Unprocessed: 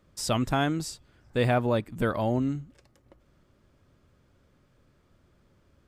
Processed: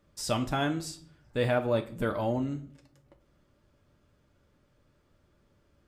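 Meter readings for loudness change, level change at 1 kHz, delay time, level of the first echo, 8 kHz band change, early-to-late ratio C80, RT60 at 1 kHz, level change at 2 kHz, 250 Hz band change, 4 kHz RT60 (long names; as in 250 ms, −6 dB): −3.0 dB, −3.5 dB, no echo audible, no echo audible, can't be measured, 19.0 dB, 0.45 s, −2.5 dB, −3.5 dB, 0.35 s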